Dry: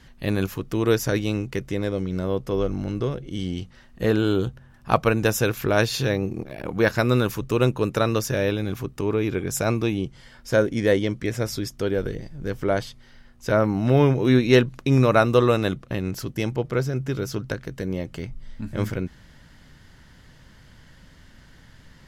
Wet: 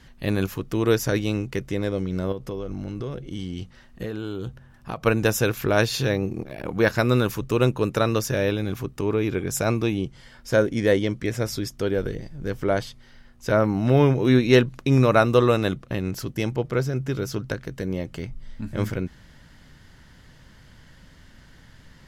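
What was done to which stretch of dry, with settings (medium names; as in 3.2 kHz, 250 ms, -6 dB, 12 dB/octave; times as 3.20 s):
2.32–5.06 s: compression 10:1, threshold -26 dBFS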